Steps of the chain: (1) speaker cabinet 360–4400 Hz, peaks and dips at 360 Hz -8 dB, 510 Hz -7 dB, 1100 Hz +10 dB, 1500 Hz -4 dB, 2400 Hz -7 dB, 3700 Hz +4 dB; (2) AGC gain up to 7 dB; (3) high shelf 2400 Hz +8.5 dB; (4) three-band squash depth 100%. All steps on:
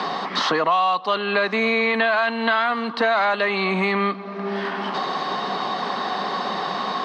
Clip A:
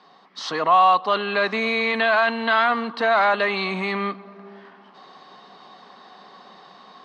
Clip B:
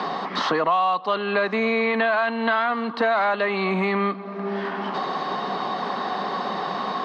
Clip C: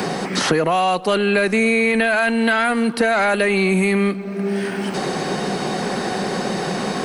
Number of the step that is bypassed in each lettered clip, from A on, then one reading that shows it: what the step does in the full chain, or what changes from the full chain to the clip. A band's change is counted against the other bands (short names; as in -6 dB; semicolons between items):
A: 4, crest factor change +2.0 dB; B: 3, 4 kHz band -4.5 dB; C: 1, loudness change +3.0 LU